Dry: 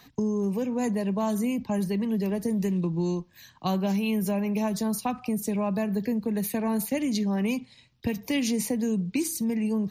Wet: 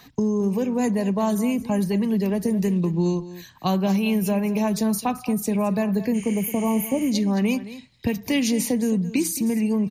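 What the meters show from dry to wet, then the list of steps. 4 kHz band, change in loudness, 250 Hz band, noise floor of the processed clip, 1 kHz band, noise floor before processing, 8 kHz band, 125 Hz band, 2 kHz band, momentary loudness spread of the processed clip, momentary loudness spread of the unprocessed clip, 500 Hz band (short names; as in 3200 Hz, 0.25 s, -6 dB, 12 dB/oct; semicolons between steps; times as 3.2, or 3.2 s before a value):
+4.5 dB, +4.5 dB, +4.5 dB, -49 dBFS, +4.5 dB, -58 dBFS, +4.5 dB, +4.5 dB, +4.5 dB, 4 LU, 4 LU, +4.5 dB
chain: spectral repair 6.17–7.04, 1300–10000 Hz after; echo 0.218 s -15 dB; gain +4.5 dB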